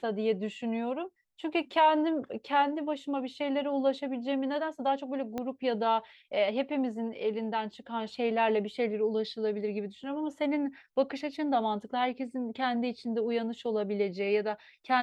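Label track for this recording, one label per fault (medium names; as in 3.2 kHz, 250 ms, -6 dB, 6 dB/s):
5.380000	5.380000	pop -21 dBFS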